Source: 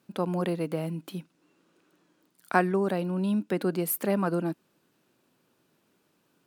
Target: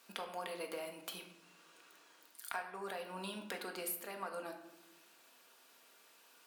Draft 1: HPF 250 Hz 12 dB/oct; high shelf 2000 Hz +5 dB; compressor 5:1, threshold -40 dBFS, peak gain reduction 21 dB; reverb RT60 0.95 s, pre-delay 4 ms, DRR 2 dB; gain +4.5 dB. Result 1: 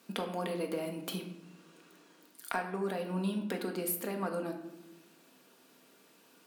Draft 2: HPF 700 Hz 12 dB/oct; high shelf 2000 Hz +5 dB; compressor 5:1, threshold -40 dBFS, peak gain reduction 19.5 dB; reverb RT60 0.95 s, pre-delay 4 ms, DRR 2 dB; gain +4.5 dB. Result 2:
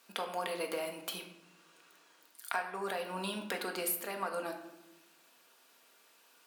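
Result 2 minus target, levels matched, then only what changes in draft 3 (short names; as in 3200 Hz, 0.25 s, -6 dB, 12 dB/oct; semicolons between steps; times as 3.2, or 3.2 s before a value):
compressor: peak gain reduction -6.5 dB
change: compressor 5:1, threshold -48 dBFS, peak gain reduction 26 dB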